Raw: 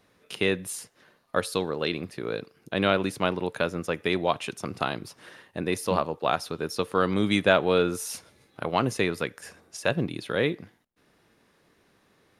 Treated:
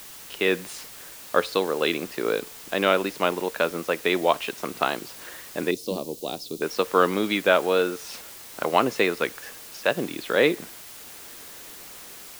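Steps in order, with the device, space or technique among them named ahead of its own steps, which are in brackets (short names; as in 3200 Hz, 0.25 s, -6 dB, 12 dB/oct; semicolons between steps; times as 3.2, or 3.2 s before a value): dictaphone (BPF 290–4400 Hz; AGC gain up to 16 dB; wow and flutter; white noise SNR 17 dB); 5.71–6.62 EQ curve 330 Hz 0 dB, 1600 Hz -27 dB, 4000 Hz -1 dB; gain -3.5 dB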